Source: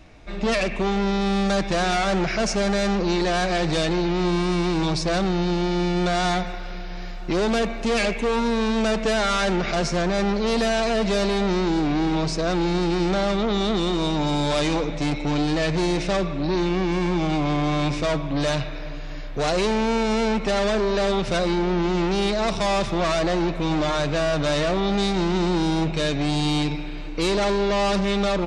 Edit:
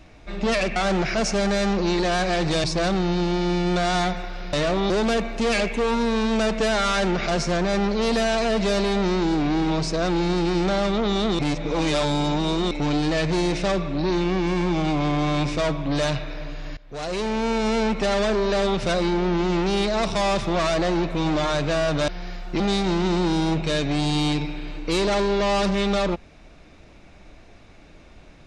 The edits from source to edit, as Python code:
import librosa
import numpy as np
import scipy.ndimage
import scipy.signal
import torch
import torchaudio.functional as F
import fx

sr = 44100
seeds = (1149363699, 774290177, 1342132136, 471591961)

y = fx.edit(x, sr, fx.cut(start_s=0.76, length_s=1.22),
    fx.cut(start_s=3.86, length_s=1.08),
    fx.swap(start_s=6.83, length_s=0.52, other_s=24.53, other_length_s=0.37),
    fx.reverse_span(start_s=13.84, length_s=1.32),
    fx.fade_in_from(start_s=19.22, length_s=1.15, curve='qsin', floor_db=-20.5), tone=tone)